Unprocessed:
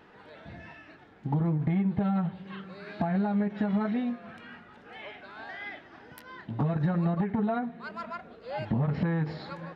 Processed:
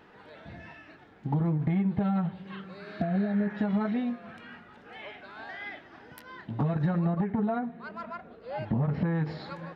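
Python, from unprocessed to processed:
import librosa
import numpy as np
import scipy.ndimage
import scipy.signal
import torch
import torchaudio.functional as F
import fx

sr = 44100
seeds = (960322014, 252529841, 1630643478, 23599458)

y = fx.spec_repair(x, sr, seeds[0], start_s=2.88, length_s=0.68, low_hz=810.0, high_hz=2500.0, source='both')
y = fx.high_shelf(y, sr, hz=2800.0, db=-8.5, at=(6.99, 9.15))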